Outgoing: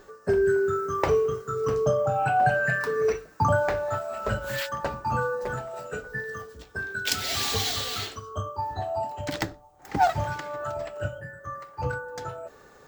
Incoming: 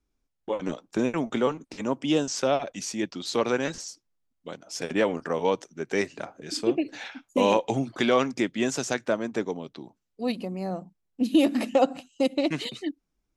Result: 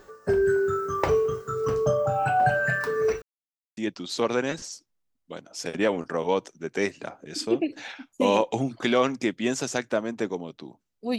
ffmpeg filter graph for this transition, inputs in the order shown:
ffmpeg -i cue0.wav -i cue1.wav -filter_complex "[0:a]apad=whole_dur=11.18,atrim=end=11.18,asplit=2[link_01][link_02];[link_01]atrim=end=3.22,asetpts=PTS-STARTPTS,afade=type=out:start_time=3.216:duration=0.004:curve=hsin[link_03];[link_02]atrim=start=3.22:end=3.77,asetpts=PTS-STARTPTS,volume=0[link_04];[1:a]atrim=start=2.93:end=10.34,asetpts=PTS-STARTPTS,afade=type=in:duration=0.004:curve=hsin[link_05];[link_03][link_04][link_05]concat=n=3:v=0:a=1" out.wav

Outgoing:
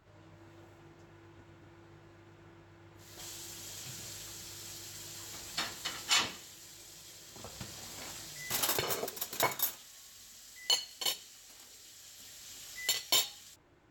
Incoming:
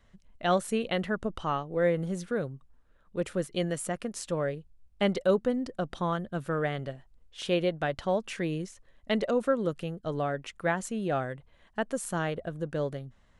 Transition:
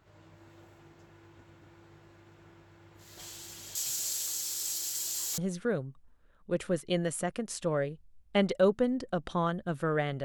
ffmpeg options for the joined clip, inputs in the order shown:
ffmpeg -i cue0.wav -i cue1.wav -filter_complex "[0:a]asettb=1/sr,asplit=3[link_01][link_02][link_03];[link_01]atrim=end=3.754[link_04];[link_02]atrim=start=3.75:end=5.38,asetpts=PTS-STARTPTS,afade=type=in:duration=0.004:curve=qsin,afade=type=out:start_time=1.626:duration=0.004:curve=qsin,bass=frequency=250:gain=-11,treble=frequency=4000:gain=15[link_05];[link_03]atrim=start=5.376[link_06];[link_04][link_05]acrossfade=duration=0.004:curve1=hsin:curve2=qsin[link_07];[link_07][link_06]acrossfade=duration=0.004:curve1=qsin:curve2=hsin,apad=whole_dur=10.24,atrim=end=10.24,atrim=end=5.382[link_08];[1:a]atrim=start=2.038:end=6.9[link_09];[link_08][link_09]acrossfade=duration=0.004:curve1=hsin:curve2=hsin" out.wav

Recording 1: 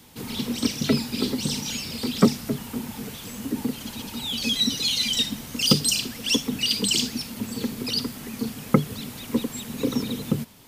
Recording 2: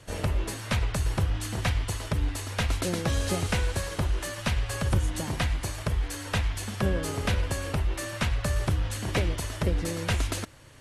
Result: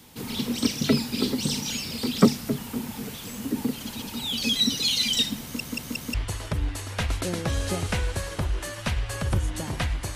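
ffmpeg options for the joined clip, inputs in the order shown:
ffmpeg -i cue0.wav -i cue1.wav -filter_complex "[0:a]apad=whole_dur=10.15,atrim=end=10.15,asplit=4[link_01][link_02][link_03][link_04];[link_01]atrim=end=5.602[link_05];[link_02]atrim=start=5.418:end=5.602[link_06];[link_03]atrim=start=5.418:end=5.602[link_07];[link_04]atrim=start=5.418:end=5.602[link_08];[1:a]atrim=start=1.738:end=5.75[link_09];[link_05][link_06]acrossfade=duration=0.004:curve1=hsin:curve2=hsin[link_10];[link_10][link_07]acrossfade=duration=0.004:curve1=hsin:curve2=hsin[link_11];[link_11][link_08]acrossfade=duration=0.004:curve1=hsin:curve2=hsin[link_12];[link_12][link_09]acrossfade=duration=0.004:curve1=hsin:curve2=hsin" out.wav

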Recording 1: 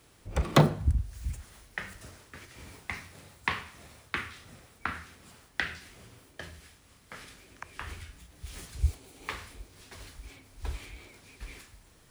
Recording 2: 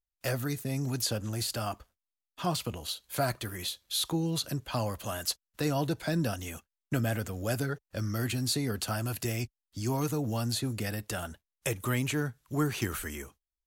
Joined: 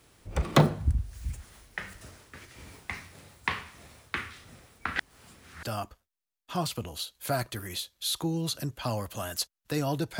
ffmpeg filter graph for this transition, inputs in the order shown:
ffmpeg -i cue0.wav -i cue1.wav -filter_complex "[0:a]apad=whole_dur=10.19,atrim=end=10.19,asplit=2[link_01][link_02];[link_01]atrim=end=4.962[link_03];[link_02]atrim=start=4.958:end=5.632,asetpts=PTS-STARTPTS,areverse[link_04];[1:a]atrim=start=1.518:end=6.08[link_05];[link_03][link_04]acrossfade=duration=0.004:curve1=hsin:curve2=hsin[link_06];[link_06][link_05]acrossfade=duration=0.004:curve1=hsin:curve2=hsin" out.wav

